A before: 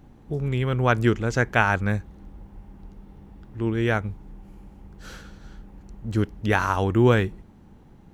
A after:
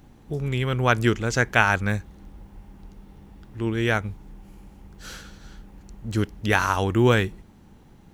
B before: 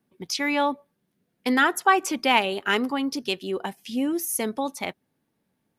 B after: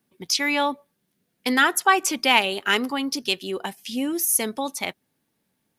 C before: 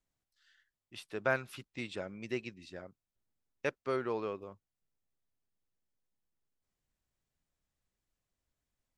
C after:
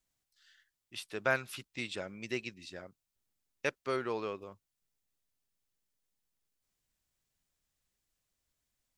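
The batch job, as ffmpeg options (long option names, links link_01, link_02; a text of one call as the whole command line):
ffmpeg -i in.wav -af "highshelf=frequency=2100:gain=8.5,volume=-1dB" out.wav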